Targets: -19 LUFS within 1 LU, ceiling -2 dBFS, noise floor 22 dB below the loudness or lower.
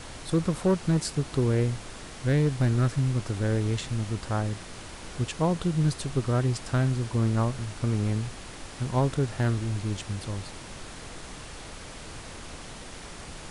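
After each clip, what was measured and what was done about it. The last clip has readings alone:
clipped 0.6%; flat tops at -16.5 dBFS; noise floor -43 dBFS; noise floor target -50 dBFS; loudness -27.5 LUFS; peak -16.5 dBFS; loudness target -19.0 LUFS
-> clip repair -16.5 dBFS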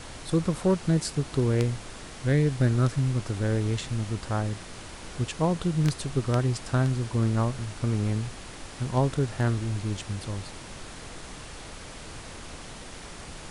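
clipped 0.0%; noise floor -43 dBFS; noise floor target -50 dBFS
-> noise print and reduce 7 dB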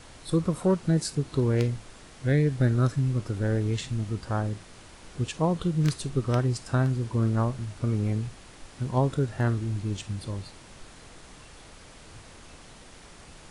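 noise floor -49 dBFS; noise floor target -50 dBFS
-> noise print and reduce 6 dB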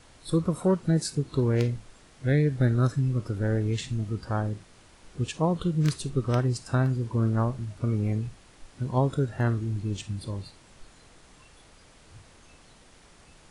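noise floor -55 dBFS; loudness -27.5 LUFS; peak -8.0 dBFS; loudness target -19.0 LUFS
-> gain +8.5 dB; limiter -2 dBFS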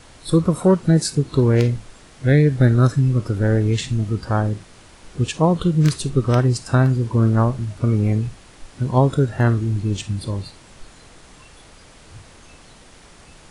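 loudness -19.0 LUFS; peak -2.0 dBFS; noise floor -47 dBFS

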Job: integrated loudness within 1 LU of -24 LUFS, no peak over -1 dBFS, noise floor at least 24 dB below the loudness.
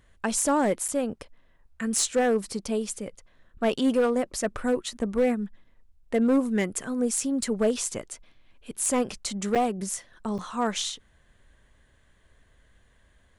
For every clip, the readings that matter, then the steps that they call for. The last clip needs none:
clipped 0.8%; flat tops at -16.5 dBFS; dropouts 3; longest dropout 6.6 ms; loudness -27.0 LUFS; peak -16.5 dBFS; loudness target -24.0 LUFS
-> clip repair -16.5 dBFS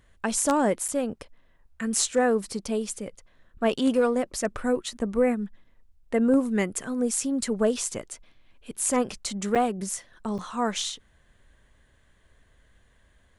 clipped 0.0%; dropouts 3; longest dropout 6.6 ms
-> interpolate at 0.88/9.55/10.38, 6.6 ms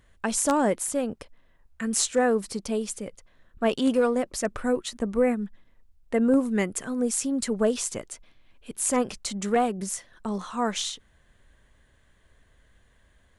dropouts 0; loudness -26.5 LUFS; peak -7.5 dBFS; loudness target -24.0 LUFS
-> gain +2.5 dB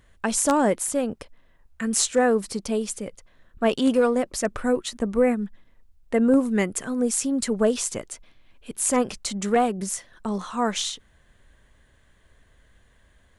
loudness -24.0 LUFS; peak -5.0 dBFS; noise floor -59 dBFS

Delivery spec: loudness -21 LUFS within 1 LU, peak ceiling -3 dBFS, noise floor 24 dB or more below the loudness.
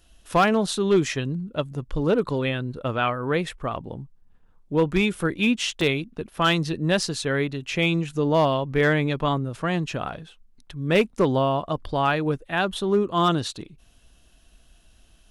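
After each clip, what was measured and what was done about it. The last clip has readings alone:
clipped 0.3%; flat tops at -12.0 dBFS; dropouts 1; longest dropout 2.0 ms; loudness -24.0 LUFS; peak -12.0 dBFS; loudness target -21.0 LUFS
-> clip repair -12 dBFS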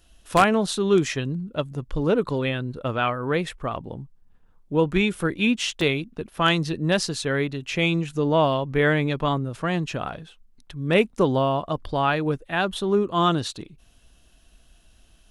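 clipped 0.0%; dropouts 1; longest dropout 2.0 ms
-> interpolate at 5.81, 2 ms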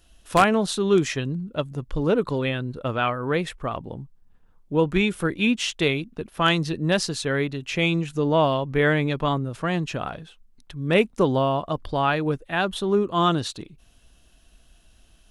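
dropouts 0; loudness -23.5 LUFS; peak -3.0 dBFS; loudness target -21.0 LUFS
-> gain +2.5 dB; limiter -3 dBFS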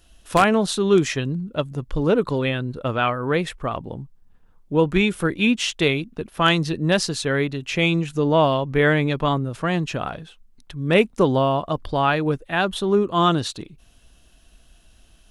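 loudness -21.5 LUFS; peak -3.0 dBFS; noise floor -55 dBFS

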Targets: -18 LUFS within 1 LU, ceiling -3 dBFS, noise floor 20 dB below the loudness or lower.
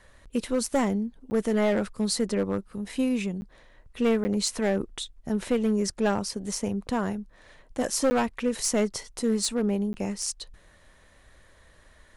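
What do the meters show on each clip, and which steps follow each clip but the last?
clipped 1.3%; flat tops at -18.0 dBFS; dropouts 5; longest dropout 10 ms; loudness -27.5 LUFS; peak -18.0 dBFS; loudness target -18.0 LUFS
-> clip repair -18 dBFS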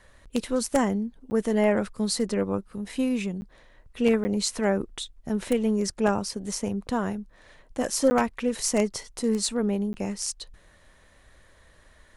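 clipped 0.0%; dropouts 5; longest dropout 10 ms
-> interpolate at 1.3/3.41/4.24/8.1/9.93, 10 ms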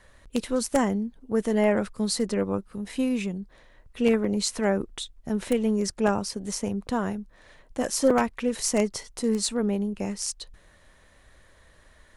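dropouts 0; loudness -27.0 LUFS; peak -8.5 dBFS; loudness target -18.0 LUFS
-> gain +9 dB; limiter -3 dBFS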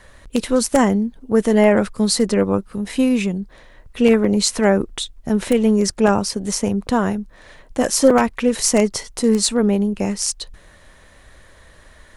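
loudness -18.0 LUFS; peak -3.0 dBFS; noise floor -48 dBFS

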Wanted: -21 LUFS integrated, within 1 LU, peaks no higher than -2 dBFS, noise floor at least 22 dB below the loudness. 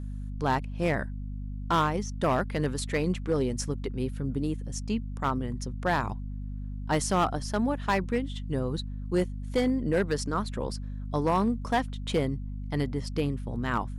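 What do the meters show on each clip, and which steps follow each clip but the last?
clipped 0.7%; flat tops at -18.5 dBFS; hum 50 Hz; harmonics up to 250 Hz; hum level -33 dBFS; loudness -30.0 LUFS; peak -18.5 dBFS; loudness target -21.0 LUFS
-> clip repair -18.5 dBFS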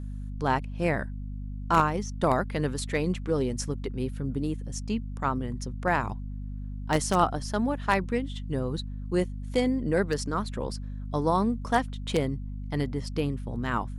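clipped 0.0%; hum 50 Hz; harmonics up to 250 Hz; hum level -33 dBFS
-> notches 50/100/150/200/250 Hz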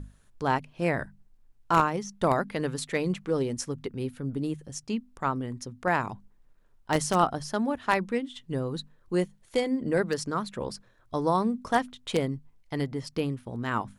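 hum none; loudness -29.5 LUFS; peak -9.0 dBFS; loudness target -21.0 LUFS
-> gain +8.5 dB; limiter -2 dBFS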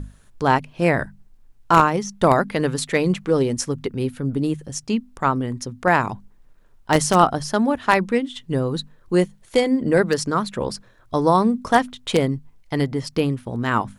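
loudness -21.0 LUFS; peak -2.0 dBFS; noise floor -53 dBFS

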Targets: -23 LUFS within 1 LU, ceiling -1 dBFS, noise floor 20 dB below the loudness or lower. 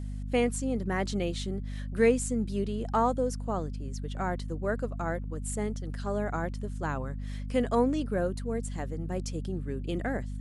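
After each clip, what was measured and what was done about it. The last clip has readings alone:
hum 50 Hz; harmonics up to 250 Hz; hum level -33 dBFS; loudness -31.5 LUFS; peak -12.5 dBFS; loudness target -23.0 LUFS
-> notches 50/100/150/200/250 Hz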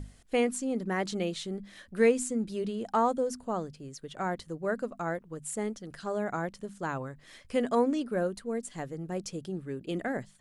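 hum none; loudness -32.0 LUFS; peak -13.0 dBFS; loudness target -23.0 LUFS
-> gain +9 dB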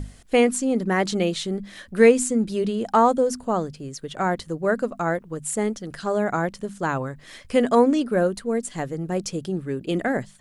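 loudness -23.0 LUFS; peak -4.0 dBFS; noise floor -49 dBFS

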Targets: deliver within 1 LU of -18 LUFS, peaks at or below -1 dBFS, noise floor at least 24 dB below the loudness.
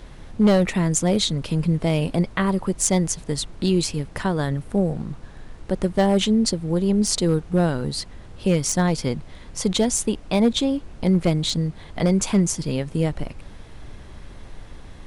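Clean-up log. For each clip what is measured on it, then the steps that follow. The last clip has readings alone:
clipped 0.3%; flat tops at -10.5 dBFS; noise floor -42 dBFS; noise floor target -46 dBFS; loudness -22.0 LUFS; peak -10.5 dBFS; loudness target -18.0 LUFS
-> clip repair -10.5 dBFS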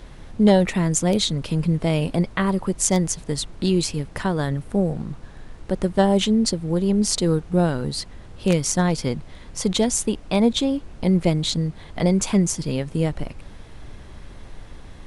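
clipped 0.0%; noise floor -42 dBFS; noise floor target -46 dBFS
-> noise print and reduce 6 dB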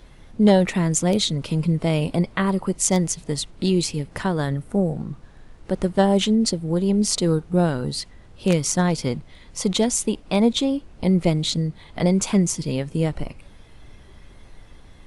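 noise floor -47 dBFS; loudness -22.0 LUFS; peak -3.5 dBFS; loudness target -18.0 LUFS
-> gain +4 dB; limiter -1 dBFS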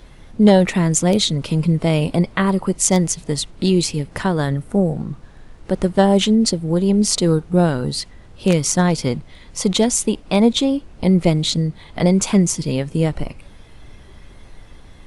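loudness -18.0 LUFS; peak -1.0 dBFS; noise floor -43 dBFS

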